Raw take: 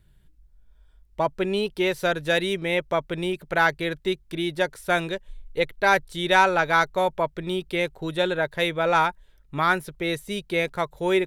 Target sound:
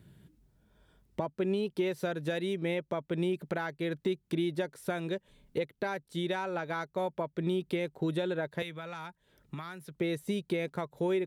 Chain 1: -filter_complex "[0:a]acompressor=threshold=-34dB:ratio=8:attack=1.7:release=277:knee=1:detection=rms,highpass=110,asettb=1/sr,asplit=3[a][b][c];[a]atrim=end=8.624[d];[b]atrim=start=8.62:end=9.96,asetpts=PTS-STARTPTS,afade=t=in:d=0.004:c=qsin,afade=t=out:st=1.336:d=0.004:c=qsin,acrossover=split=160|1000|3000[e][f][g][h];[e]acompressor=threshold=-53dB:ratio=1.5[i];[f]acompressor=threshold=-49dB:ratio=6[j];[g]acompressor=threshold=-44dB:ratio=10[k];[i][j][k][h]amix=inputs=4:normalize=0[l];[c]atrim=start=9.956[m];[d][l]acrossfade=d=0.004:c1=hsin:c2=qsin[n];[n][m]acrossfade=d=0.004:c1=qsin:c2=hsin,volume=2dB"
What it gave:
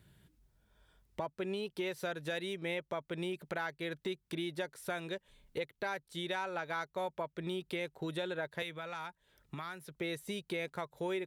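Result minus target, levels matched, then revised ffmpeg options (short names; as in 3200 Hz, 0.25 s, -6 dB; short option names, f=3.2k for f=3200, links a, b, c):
250 Hz band -3.0 dB
-filter_complex "[0:a]acompressor=threshold=-34dB:ratio=8:attack=1.7:release=277:knee=1:detection=rms,highpass=110,equalizer=f=220:t=o:w=2.7:g=9.5,asettb=1/sr,asplit=3[a][b][c];[a]atrim=end=8.624[d];[b]atrim=start=8.62:end=9.96,asetpts=PTS-STARTPTS,afade=t=in:d=0.004:c=qsin,afade=t=out:st=1.336:d=0.004:c=qsin,acrossover=split=160|1000|3000[e][f][g][h];[e]acompressor=threshold=-53dB:ratio=1.5[i];[f]acompressor=threshold=-49dB:ratio=6[j];[g]acompressor=threshold=-44dB:ratio=10[k];[i][j][k][h]amix=inputs=4:normalize=0[l];[c]atrim=start=9.956[m];[d][l]acrossfade=d=0.004:c1=hsin:c2=qsin[n];[n][m]acrossfade=d=0.004:c1=qsin:c2=hsin,volume=2dB"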